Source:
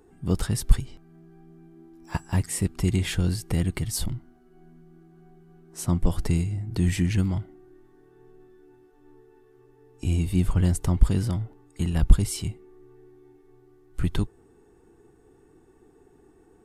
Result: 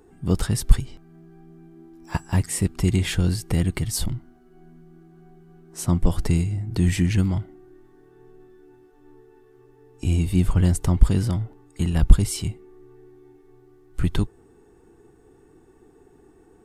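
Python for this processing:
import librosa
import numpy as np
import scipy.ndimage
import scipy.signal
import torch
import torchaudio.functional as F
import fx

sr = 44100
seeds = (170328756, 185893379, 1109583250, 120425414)

y = fx.peak_eq(x, sr, hz=11000.0, db=-2.0, octaves=0.21)
y = F.gain(torch.from_numpy(y), 3.0).numpy()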